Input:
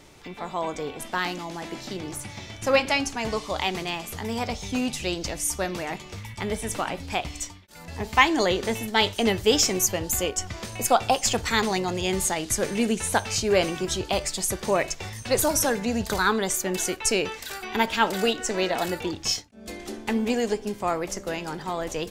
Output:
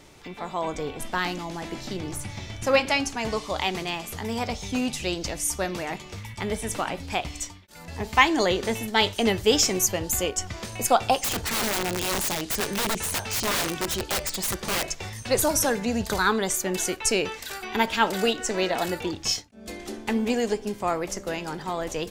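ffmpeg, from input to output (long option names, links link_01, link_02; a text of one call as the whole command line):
ffmpeg -i in.wav -filter_complex "[0:a]asettb=1/sr,asplit=3[link_01][link_02][link_03];[link_01]atrim=end=0.654[link_04];[link_02]atrim=start=0.65:end=2.63,asetpts=PTS-STARTPTS,afade=type=in:duration=0.004:curve=qsin,afade=type=out:start_time=1.976:duration=0.004:curve=qsin,lowshelf=frequency=93:gain=11[link_05];[link_03]atrim=start=2.626[link_06];[link_04][link_05]acrossfade=duration=0.004:curve1=hsin:curve2=qsin[link_07];[link_07][link_06]acrossfade=duration=0.004:curve1=qsin:curve2=hsin,asettb=1/sr,asplit=3[link_08][link_09][link_10];[link_08]atrim=end=11.244[link_11];[link_09]atrim=start=11.24:end=14.91,asetpts=PTS-STARTPTS,afade=type=in:duration=0.004:curve=qsin,afade=type=out:start_time=3.666:duration=0.004:curve=qsin,aeval=exprs='(mod(10.6*val(0)+1,2)-1)/10.6':channel_layout=same[link_12];[link_10]atrim=start=14.906[link_13];[link_11][link_12]acrossfade=duration=0.004:curve1=hsin:curve2=qsin[link_14];[link_14][link_13]acrossfade=duration=0.004:curve1=qsin:curve2=hsin" out.wav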